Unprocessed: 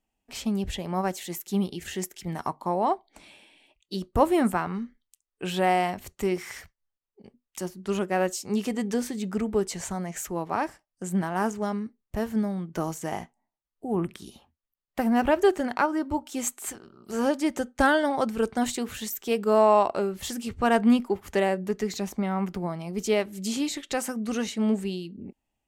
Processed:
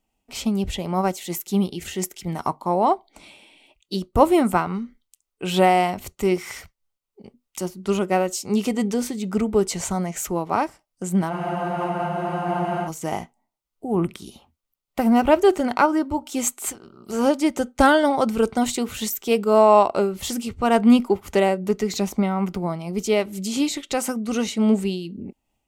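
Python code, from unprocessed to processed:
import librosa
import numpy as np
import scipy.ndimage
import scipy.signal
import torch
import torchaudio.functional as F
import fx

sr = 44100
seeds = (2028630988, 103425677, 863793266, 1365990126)

y = fx.notch(x, sr, hz=1700.0, q=5.4)
y = fx.spec_freeze(y, sr, seeds[0], at_s=11.34, hold_s=1.53)
y = fx.am_noise(y, sr, seeds[1], hz=5.7, depth_pct=60)
y = F.gain(torch.from_numpy(y), 8.5).numpy()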